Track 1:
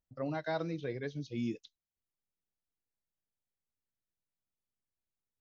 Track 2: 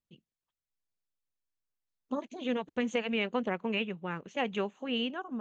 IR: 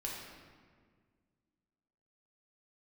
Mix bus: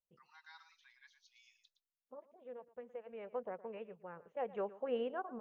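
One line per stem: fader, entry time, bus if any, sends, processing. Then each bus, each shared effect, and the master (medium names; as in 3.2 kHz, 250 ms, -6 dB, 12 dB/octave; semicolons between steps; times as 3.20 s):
-16.0 dB, 0.00 s, no send, echo send -11 dB, steep high-pass 860 Hz 96 dB/octave
1.70 s -10.5 dB -> 1.99 s -23 dB -> 3.02 s -23 dB -> 3.30 s -16 dB -> 4.24 s -16 dB -> 4.87 s -6 dB, 0.00 s, no send, echo send -18 dB, FFT filter 110 Hz 0 dB, 290 Hz -7 dB, 500 Hz +10 dB, 1.6 kHz -1 dB, 4.9 kHz -28 dB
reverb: none
echo: delay 115 ms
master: treble shelf 5.5 kHz +8.5 dB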